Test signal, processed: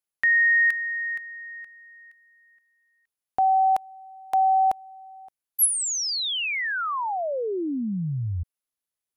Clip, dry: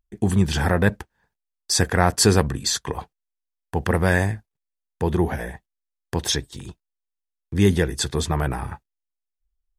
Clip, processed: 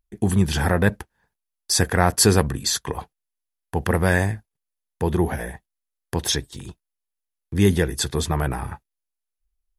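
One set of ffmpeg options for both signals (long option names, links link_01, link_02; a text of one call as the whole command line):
ffmpeg -i in.wav -af "equalizer=frequency=11000:width=6.4:gain=12" out.wav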